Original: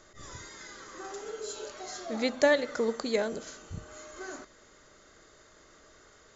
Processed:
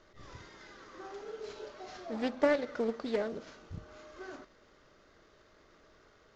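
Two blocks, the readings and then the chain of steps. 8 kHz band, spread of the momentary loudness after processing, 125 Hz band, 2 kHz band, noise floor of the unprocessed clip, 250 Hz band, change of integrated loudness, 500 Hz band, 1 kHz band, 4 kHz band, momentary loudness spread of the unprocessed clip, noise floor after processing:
no reading, 22 LU, -3.0 dB, -7.5 dB, -59 dBFS, -2.0 dB, -4.5 dB, -4.0 dB, -3.5 dB, -9.5 dB, 20 LU, -64 dBFS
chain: CVSD coder 32 kbps; treble shelf 2.2 kHz -8.5 dB; loudspeaker Doppler distortion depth 0.22 ms; trim -3 dB

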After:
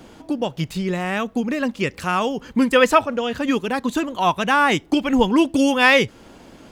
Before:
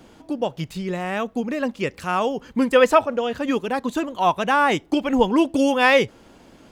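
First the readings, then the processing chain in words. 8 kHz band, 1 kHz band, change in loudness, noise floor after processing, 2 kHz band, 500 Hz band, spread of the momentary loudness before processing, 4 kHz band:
+4.5 dB, +0.5 dB, +1.5 dB, -48 dBFS, +3.5 dB, -1.0 dB, 11 LU, +4.0 dB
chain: dynamic bell 610 Hz, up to -6 dB, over -30 dBFS, Q 0.79; trim +4.5 dB

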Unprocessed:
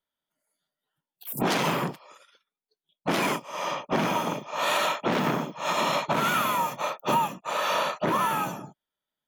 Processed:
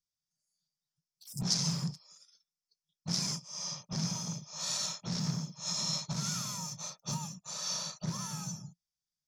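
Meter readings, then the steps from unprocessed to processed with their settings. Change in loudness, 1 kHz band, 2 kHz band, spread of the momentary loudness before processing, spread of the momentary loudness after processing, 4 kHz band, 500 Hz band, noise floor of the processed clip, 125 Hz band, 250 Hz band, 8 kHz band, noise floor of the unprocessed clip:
-8.0 dB, -22.0 dB, -20.5 dB, 7 LU, 9 LU, -2.5 dB, -23.0 dB, under -85 dBFS, -0.5 dB, -8.0 dB, +4.0 dB, under -85 dBFS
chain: FFT filter 170 Hz 0 dB, 280 Hz -24 dB, 3 kHz -20 dB, 5.3 kHz +11 dB, 15 kHz -21 dB

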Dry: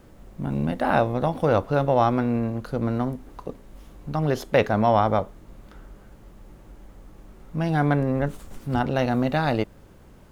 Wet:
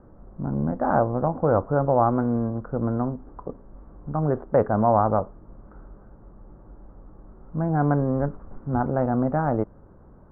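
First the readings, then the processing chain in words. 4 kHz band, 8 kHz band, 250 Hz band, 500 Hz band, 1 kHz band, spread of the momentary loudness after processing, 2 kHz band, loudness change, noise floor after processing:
under -40 dB, no reading, 0.0 dB, 0.0 dB, 0.0 dB, 14 LU, -7.5 dB, 0.0 dB, -50 dBFS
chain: steep low-pass 1.4 kHz 36 dB/octave

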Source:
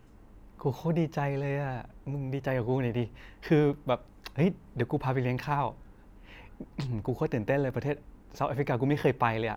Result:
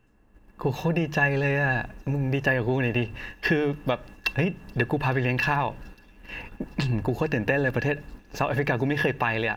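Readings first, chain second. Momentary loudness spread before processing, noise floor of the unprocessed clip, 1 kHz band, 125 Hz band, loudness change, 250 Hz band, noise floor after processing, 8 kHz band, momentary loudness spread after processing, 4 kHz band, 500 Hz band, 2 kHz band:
11 LU, -55 dBFS, +3.5 dB, +4.0 dB, +4.5 dB, +3.0 dB, -55 dBFS, no reading, 9 LU, +9.0 dB, +3.0 dB, +13.0 dB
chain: hum notches 50/100/150 Hz; gate -50 dBFS, range -9 dB; dynamic bell 3.2 kHz, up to +4 dB, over -50 dBFS, Q 0.91; level rider gain up to 8 dB; in parallel at -1 dB: peak limiter -14 dBFS, peak gain reduction 9.5 dB; on the sum: compression, threshold -17 dBFS, peak gain reduction 8.5 dB; small resonant body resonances 1.7/2.7 kHz, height 18 dB, ringing for 75 ms; on a send: feedback echo behind a high-pass 429 ms, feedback 83%, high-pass 5.5 kHz, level -19 dB; on the sum: trim -4 dB

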